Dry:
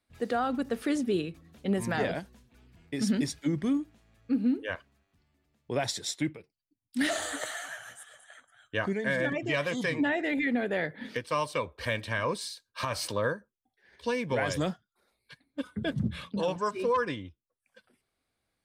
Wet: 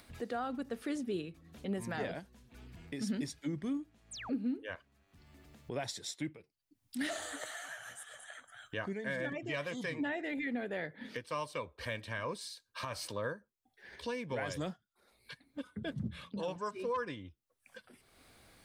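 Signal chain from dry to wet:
upward compression, threshold −30 dBFS
sound drawn into the spectrogram fall, 0:04.11–0:04.36, 250–9,900 Hz −37 dBFS
level −8.5 dB

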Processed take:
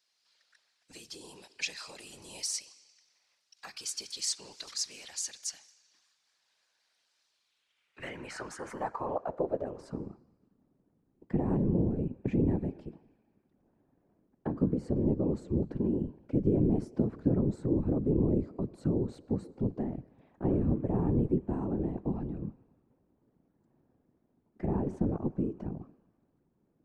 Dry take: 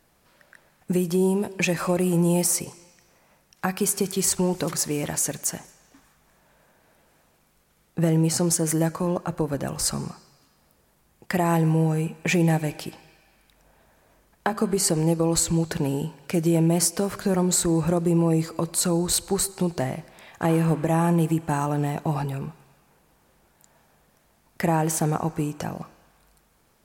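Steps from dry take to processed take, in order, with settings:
Bessel low-pass filter 8,800 Hz
band-pass filter sweep 4,600 Hz → 240 Hz, 0:07.31–0:10.26
random phases in short frames

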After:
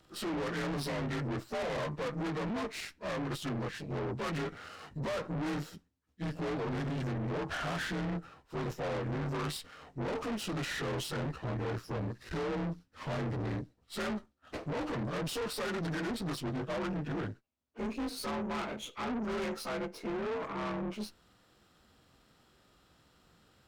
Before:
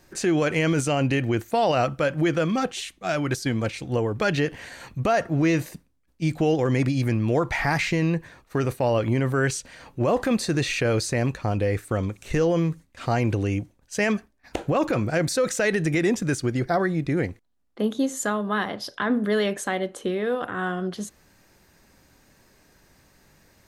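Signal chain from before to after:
partials spread apart or drawn together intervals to 86%
tube saturation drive 33 dB, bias 0.75
windowed peak hold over 3 samples

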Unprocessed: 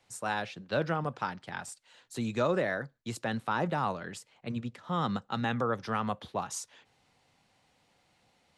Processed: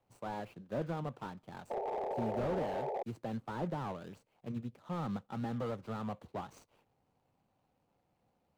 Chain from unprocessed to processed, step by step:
running median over 25 samples
sound drawn into the spectrogram noise, 0:01.70–0:03.03, 370–920 Hz −32 dBFS
slew-rate limiting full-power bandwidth 24 Hz
level −4.5 dB

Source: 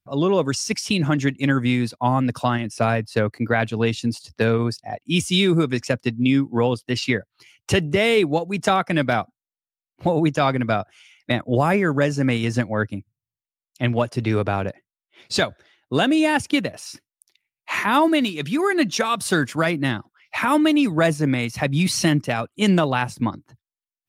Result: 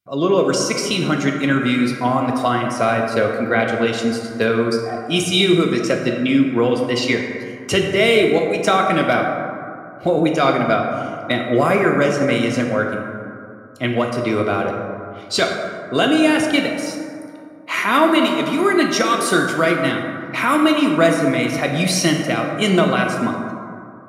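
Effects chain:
low-shelf EQ 230 Hz −8.5 dB
notch comb filter 860 Hz
dense smooth reverb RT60 2.5 s, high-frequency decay 0.35×, DRR 1.5 dB
level +4 dB

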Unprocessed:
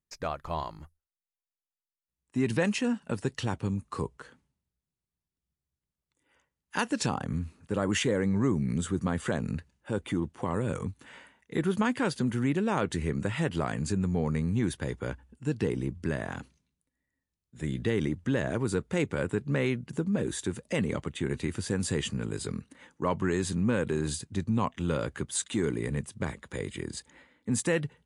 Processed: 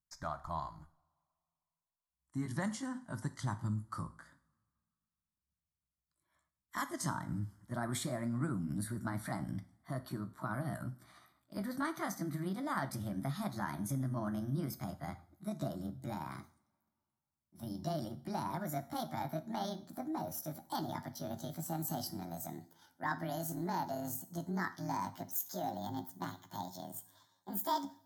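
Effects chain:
pitch glide at a constant tempo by +11 semitones starting unshifted
phaser with its sweep stopped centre 1,100 Hz, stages 4
coupled-rooms reverb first 0.45 s, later 2.3 s, from −27 dB, DRR 10.5 dB
level −4 dB

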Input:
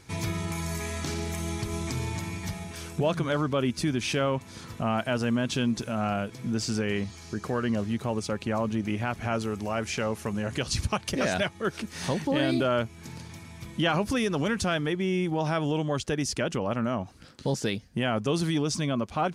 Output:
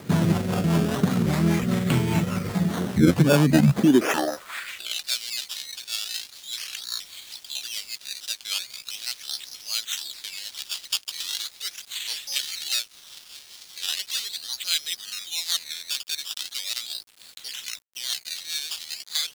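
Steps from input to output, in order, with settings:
pitch shifter gated in a rhythm −10 semitones, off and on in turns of 318 ms
in parallel at +2 dB: downward compressor 20 to 1, threshold −36 dBFS, peak gain reduction 15.5 dB
on the sum: sample-and-hold swept by an LFO 15×, swing 100% 0.39 Hz
high-pass filter sweep 170 Hz → 3,900 Hz, 0:03.73–0:04.97
rotating-speaker cabinet horn 5 Hz
bit reduction 9 bits
wow of a warped record 33 1/3 rpm, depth 160 cents
level +6.5 dB

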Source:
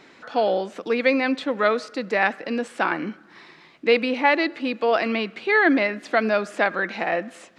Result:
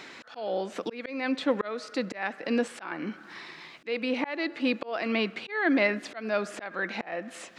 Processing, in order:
volume swells 445 ms
one half of a high-frequency compander encoder only

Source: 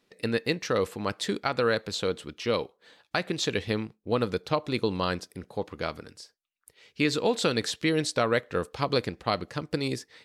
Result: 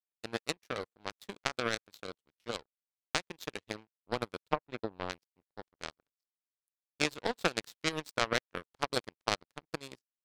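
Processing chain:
power curve on the samples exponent 3
0:04.44–0:05.10: treble cut that deepens with the level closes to 1,500 Hz, closed at −38 dBFS
level +3.5 dB

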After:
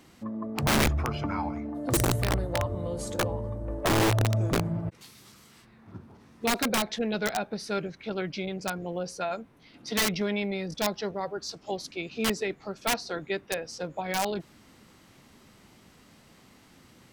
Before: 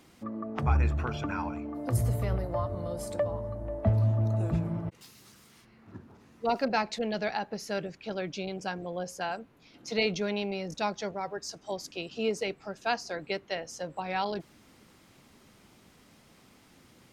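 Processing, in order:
formants moved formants −2 semitones
wrap-around overflow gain 21 dB
level +2.5 dB

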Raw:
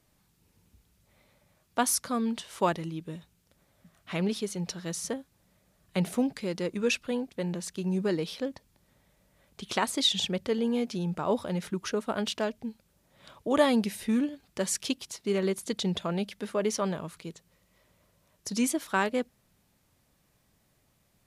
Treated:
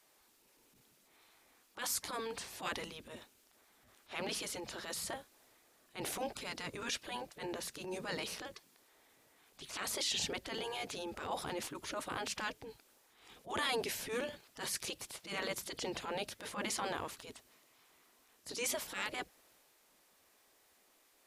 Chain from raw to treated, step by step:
gate on every frequency bin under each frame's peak −10 dB weak
brickwall limiter −27.5 dBFS, peak gain reduction 11 dB
transient designer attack −11 dB, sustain +2 dB
level +3.5 dB

